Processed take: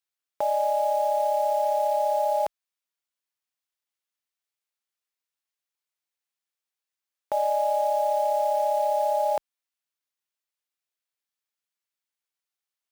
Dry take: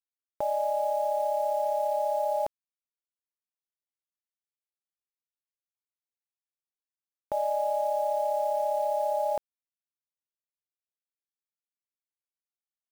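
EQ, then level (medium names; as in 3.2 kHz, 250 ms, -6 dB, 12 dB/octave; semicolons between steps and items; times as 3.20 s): tilt EQ +2.5 dB/octave; bass shelf 400 Hz -4.5 dB; treble shelf 5.6 kHz -12 dB; +6.5 dB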